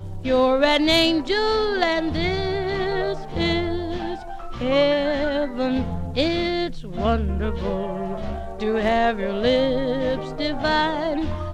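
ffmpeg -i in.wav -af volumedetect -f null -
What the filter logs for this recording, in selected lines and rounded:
mean_volume: -22.1 dB
max_volume: -5.0 dB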